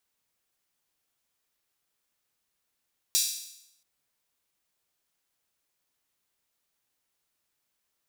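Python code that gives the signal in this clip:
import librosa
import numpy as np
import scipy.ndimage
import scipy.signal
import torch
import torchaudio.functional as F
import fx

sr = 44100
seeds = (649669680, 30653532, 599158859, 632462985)

y = fx.drum_hat_open(sr, length_s=0.68, from_hz=4600.0, decay_s=0.8)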